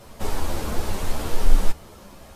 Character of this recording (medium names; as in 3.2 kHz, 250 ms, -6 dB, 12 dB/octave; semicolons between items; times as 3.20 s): a quantiser's noise floor 12-bit, dither none; a shimmering, thickened sound